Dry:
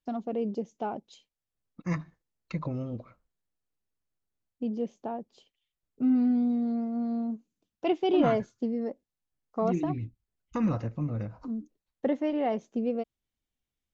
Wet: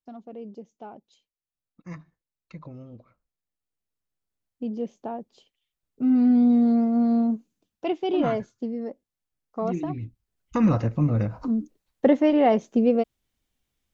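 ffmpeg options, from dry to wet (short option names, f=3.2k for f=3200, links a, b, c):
-af "volume=19dB,afade=t=in:st=2.95:d=2:silence=0.298538,afade=t=in:st=6.02:d=0.56:silence=0.421697,afade=t=out:st=7.2:d=0.69:silence=0.334965,afade=t=in:st=9.93:d=1.12:silence=0.334965"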